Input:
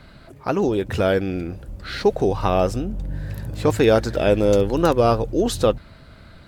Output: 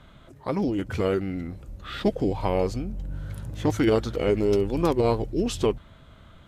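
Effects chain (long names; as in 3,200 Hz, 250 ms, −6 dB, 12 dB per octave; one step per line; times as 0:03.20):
formants moved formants −3 semitones
level −5 dB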